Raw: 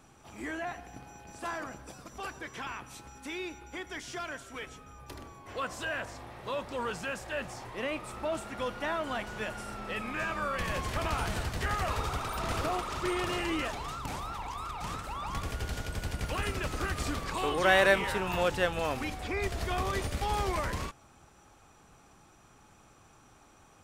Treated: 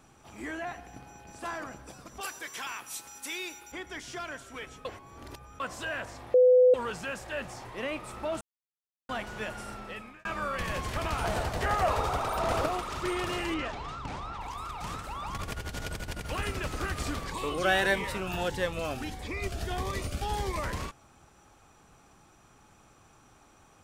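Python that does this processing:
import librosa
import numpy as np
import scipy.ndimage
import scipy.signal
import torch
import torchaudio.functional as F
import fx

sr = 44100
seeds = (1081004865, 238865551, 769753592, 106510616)

y = fx.riaa(x, sr, side='recording', at=(2.21, 3.72))
y = fx.peak_eq(y, sr, hz=660.0, db=9.5, octaves=1.4, at=(11.24, 12.66))
y = fx.air_absorb(y, sr, metres=100.0, at=(13.54, 14.41))
y = fx.over_compress(y, sr, threshold_db=-37.0, ratio=-0.5, at=(15.36, 16.24), fade=0.02)
y = fx.notch_cascade(y, sr, direction='rising', hz=1.6, at=(17.27, 20.61), fade=0.02)
y = fx.edit(y, sr, fx.reverse_span(start_s=4.85, length_s=0.75),
    fx.bleep(start_s=6.34, length_s=0.4, hz=503.0, db=-15.5),
    fx.silence(start_s=8.41, length_s=0.68),
    fx.fade_out_span(start_s=9.7, length_s=0.55), tone=tone)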